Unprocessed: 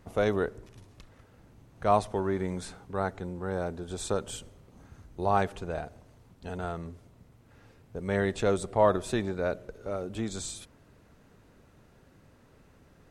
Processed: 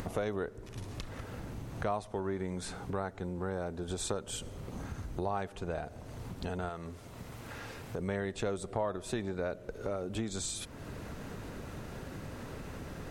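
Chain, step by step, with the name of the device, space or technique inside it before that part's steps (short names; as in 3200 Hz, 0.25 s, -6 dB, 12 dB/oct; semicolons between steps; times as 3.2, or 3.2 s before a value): 6.69–7.99 low shelf 470 Hz -9 dB; upward and downward compression (upward compressor, threshold -35 dBFS; compressor 4:1, threshold -37 dBFS, peak gain reduction 16.5 dB); gain +4 dB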